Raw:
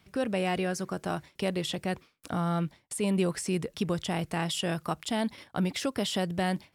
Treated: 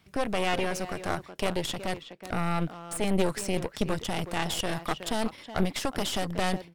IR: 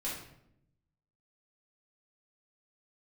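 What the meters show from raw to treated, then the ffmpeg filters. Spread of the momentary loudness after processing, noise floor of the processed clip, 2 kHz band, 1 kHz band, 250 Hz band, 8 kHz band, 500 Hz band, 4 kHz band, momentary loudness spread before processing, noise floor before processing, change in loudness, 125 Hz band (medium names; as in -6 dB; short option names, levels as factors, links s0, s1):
5 LU, -53 dBFS, +2.5 dB, +2.5 dB, -1.5 dB, +1.5 dB, +1.0 dB, +1.5 dB, 5 LU, -68 dBFS, +0.5 dB, -1.5 dB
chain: -filter_complex "[0:a]asplit=2[s0][s1];[s1]adelay=370,highpass=300,lowpass=3400,asoftclip=type=hard:threshold=0.0501,volume=0.355[s2];[s0][s2]amix=inputs=2:normalize=0,aeval=exprs='0.168*(cos(1*acos(clip(val(0)/0.168,-1,1)))-cos(1*PI/2))+0.0596*(cos(4*acos(clip(val(0)/0.168,-1,1)))-cos(4*PI/2))':c=same"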